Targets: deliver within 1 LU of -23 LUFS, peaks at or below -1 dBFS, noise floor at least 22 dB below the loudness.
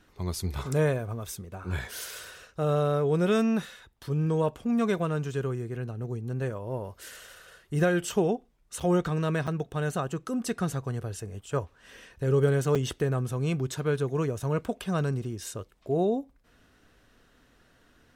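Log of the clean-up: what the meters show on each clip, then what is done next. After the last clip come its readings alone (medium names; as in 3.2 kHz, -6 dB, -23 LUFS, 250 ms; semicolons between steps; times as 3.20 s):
dropouts 3; longest dropout 6.5 ms; loudness -29.0 LUFS; peak level -13.0 dBFS; loudness target -23.0 LUFS
-> interpolate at 8.80/9.47/12.75 s, 6.5 ms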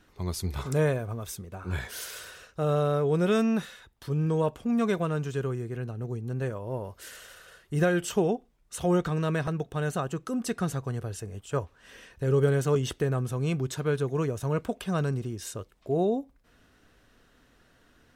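dropouts 0; loudness -29.0 LUFS; peak level -13.0 dBFS; loudness target -23.0 LUFS
-> trim +6 dB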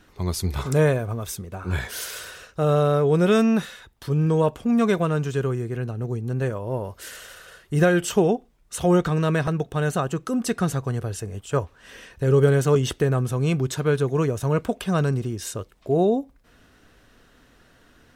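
loudness -23.0 LUFS; peak level -7.0 dBFS; noise floor -57 dBFS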